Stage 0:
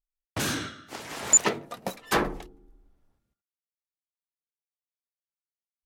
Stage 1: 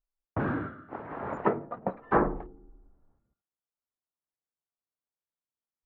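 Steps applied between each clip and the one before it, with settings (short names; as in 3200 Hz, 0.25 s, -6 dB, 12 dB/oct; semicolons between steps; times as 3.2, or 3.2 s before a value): LPF 1400 Hz 24 dB/oct; gain +2 dB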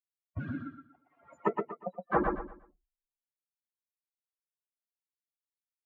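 per-bin expansion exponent 3; on a send: feedback echo 0.119 s, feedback 29%, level -4.5 dB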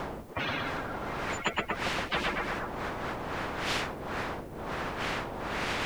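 wind noise 480 Hz -50 dBFS; spectral compressor 10:1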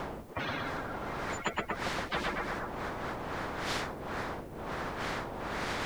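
dynamic EQ 2700 Hz, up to -6 dB, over -48 dBFS, Q 2.6; gain -2 dB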